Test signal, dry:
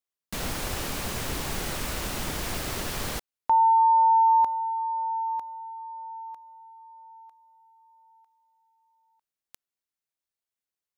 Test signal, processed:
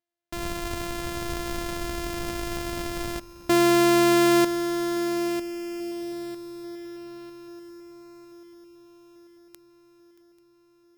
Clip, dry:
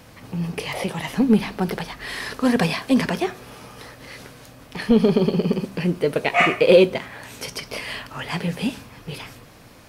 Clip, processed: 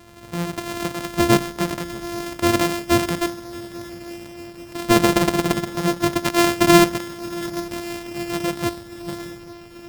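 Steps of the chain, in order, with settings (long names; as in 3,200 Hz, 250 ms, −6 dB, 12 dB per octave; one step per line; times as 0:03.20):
samples sorted by size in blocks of 128 samples
on a send: feedback echo with a long and a short gap by turns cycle 839 ms, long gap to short 3 to 1, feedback 62%, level −19.5 dB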